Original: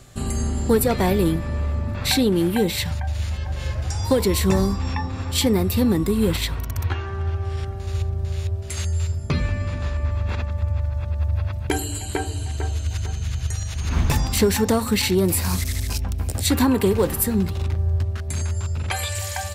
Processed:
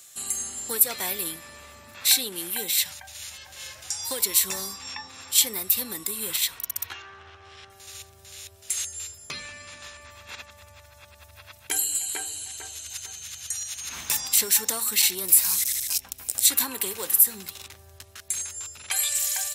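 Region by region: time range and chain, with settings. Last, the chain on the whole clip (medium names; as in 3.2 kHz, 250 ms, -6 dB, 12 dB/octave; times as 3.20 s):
7.02–7.70 s: low-pass 3.9 kHz + loudspeaker Doppler distortion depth 0.17 ms
whole clip: differentiator; band-stop 4.6 kHz, Q 15; loudness maximiser +9.5 dB; trim -3 dB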